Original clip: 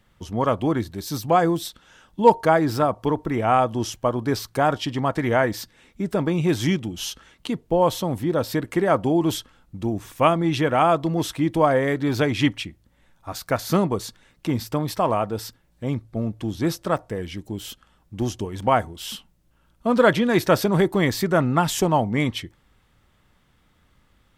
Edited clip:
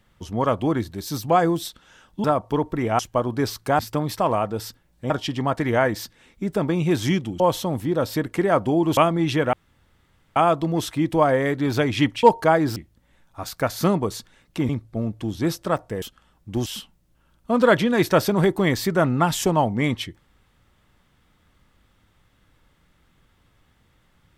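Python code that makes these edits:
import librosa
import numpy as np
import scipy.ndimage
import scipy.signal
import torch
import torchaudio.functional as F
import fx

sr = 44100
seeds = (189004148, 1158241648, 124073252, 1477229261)

y = fx.edit(x, sr, fx.move(start_s=2.24, length_s=0.53, to_s=12.65),
    fx.cut(start_s=3.52, length_s=0.36),
    fx.cut(start_s=6.98, length_s=0.8),
    fx.cut(start_s=9.35, length_s=0.87),
    fx.insert_room_tone(at_s=10.78, length_s=0.83),
    fx.move(start_s=14.58, length_s=1.31, to_s=4.68),
    fx.cut(start_s=17.22, length_s=0.45),
    fx.cut(start_s=18.31, length_s=0.71), tone=tone)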